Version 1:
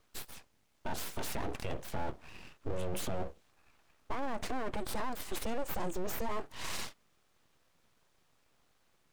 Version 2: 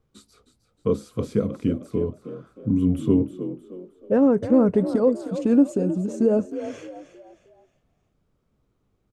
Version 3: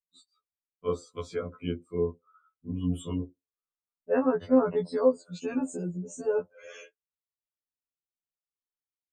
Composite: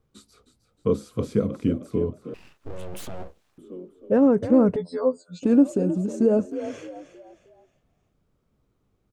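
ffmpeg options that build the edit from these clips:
ffmpeg -i take0.wav -i take1.wav -i take2.wav -filter_complex "[1:a]asplit=3[link_01][link_02][link_03];[link_01]atrim=end=2.342[link_04];[0:a]atrim=start=2.338:end=3.582[link_05];[link_02]atrim=start=3.578:end=4.762[link_06];[2:a]atrim=start=4.758:end=5.432[link_07];[link_03]atrim=start=5.428[link_08];[link_04][link_05]acrossfade=duration=0.004:curve1=hsin:curve2=hsin[link_09];[link_09][link_06]acrossfade=duration=0.004:curve1=hsin:curve2=hsin[link_10];[link_10][link_07]acrossfade=duration=0.004:curve1=hsin:curve2=hsin[link_11];[link_11][link_08]acrossfade=duration=0.004:curve1=hsin:curve2=hsin" out.wav

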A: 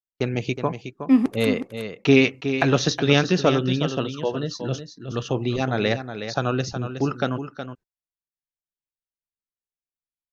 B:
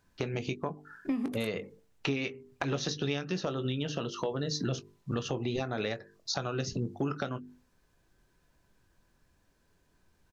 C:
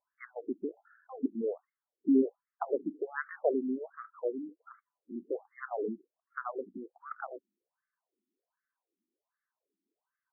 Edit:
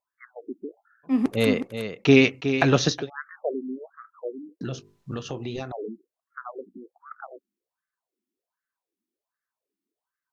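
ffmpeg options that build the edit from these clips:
ffmpeg -i take0.wav -i take1.wav -i take2.wav -filter_complex "[2:a]asplit=3[link_01][link_02][link_03];[link_01]atrim=end=1.27[link_04];[0:a]atrim=start=1.03:end=3.1[link_05];[link_02]atrim=start=2.86:end=4.612[link_06];[1:a]atrim=start=4.608:end=5.722[link_07];[link_03]atrim=start=5.718[link_08];[link_04][link_05]acrossfade=duration=0.24:curve1=tri:curve2=tri[link_09];[link_09][link_06]acrossfade=duration=0.24:curve1=tri:curve2=tri[link_10];[link_10][link_07]acrossfade=duration=0.004:curve1=hsin:curve2=hsin[link_11];[link_11][link_08]acrossfade=duration=0.004:curve1=hsin:curve2=hsin" out.wav

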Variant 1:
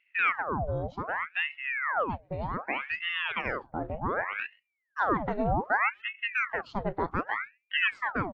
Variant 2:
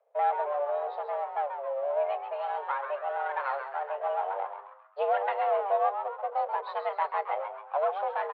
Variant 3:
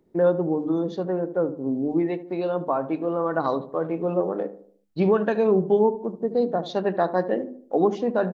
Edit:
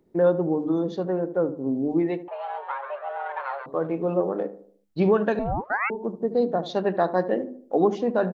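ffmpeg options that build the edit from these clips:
ffmpeg -i take0.wav -i take1.wav -i take2.wav -filter_complex "[2:a]asplit=3[link_01][link_02][link_03];[link_01]atrim=end=2.282[link_04];[1:a]atrim=start=2.278:end=3.662[link_05];[link_02]atrim=start=3.658:end=5.392[link_06];[0:a]atrim=start=5.388:end=5.902[link_07];[link_03]atrim=start=5.898[link_08];[link_04][link_05]acrossfade=duration=0.004:curve1=hsin:curve2=hsin[link_09];[link_09][link_06]acrossfade=duration=0.004:curve1=hsin:curve2=hsin[link_10];[link_10][link_07]acrossfade=duration=0.004:curve1=hsin:curve2=hsin[link_11];[link_11][link_08]acrossfade=duration=0.004:curve1=hsin:curve2=hsin" out.wav

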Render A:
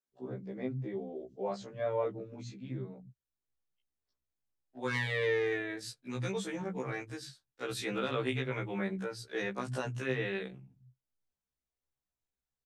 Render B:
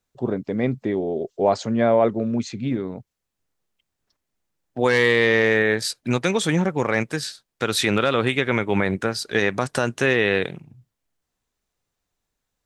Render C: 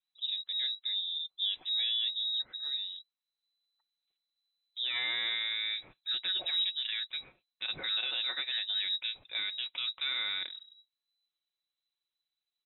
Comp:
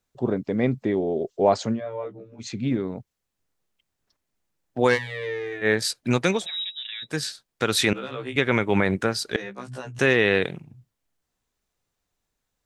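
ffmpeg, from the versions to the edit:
ffmpeg -i take0.wav -i take1.wav -i take2.wav -filter_complex "[0:a]asplit=4[link_01][link_02][link_03][link_04];[1:a]asplit=6[link_05][link_06][link_07][link_08][link_09][link_10];[link_05]atrim=end=1.81[link_11];[link_01]atrim=start=1.71:end=2.48[link_12];[link_06]atrim=start=2.38:end=4.99[link_13];[link_02]atrim=start=4.93:end=5.67[link_14];[link_07]atrim=start=5.61:end=6.47[link_15];[2:a]atrim=start=6.31:end=7.18[link_16];[link_08]atrim=start=7.02:end=7.932[link_17];[link_03]atrim=start=7.928:end=8.362[link_18];[link_09]atrim=start=8.358:end=9.362[link_19];[link_04]atrim=start=9.358:end=9.992[link_20];[link_10]atrim=start=9.988[link_21];[link_11][link_12]acrossfade=duration=0.1:curve1=tri:curve2=tri[link_22];[link_22][link_13]acrossfade=duration=0.1:curve1=tri:curve2=tri[link_23];[link_23][link_14]acrossfade=duration=0.06:curve1=tri:curve2=tri[link_24];[link_24][link_15]acrossfade=duration=0.06:curve1=tri:curve2=tri[link_25];[link_25][link_16]acrossfade=duration=0.16:curve1=tri:curve2=tri[link_26];[link_26][link_17]acrossfade=duration=0.16:curve1=tri:curve2=tri[link_27];[link_27][link_18]acrossfade=duration=0.004:curve1=hsin:curve2=hsin[link_28];[link_28][link_19]acrossfade=duration=0.004:curve1=hsin:curve2=hsin[link_29];[link_29][link_20]acrossfade=duration=0.004:curve1=hsin:curve2=hsin[link_30];[link_30][link_21]acrossfade=duration=0.004:curve1=hsin:curve2=hsin" out.wav

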